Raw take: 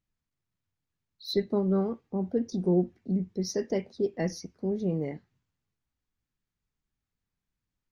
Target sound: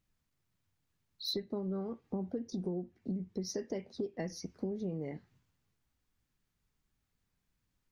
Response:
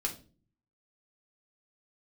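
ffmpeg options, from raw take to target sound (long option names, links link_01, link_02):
-af "acompressor=threshold=-39dB:ratio=12,volume=5dB"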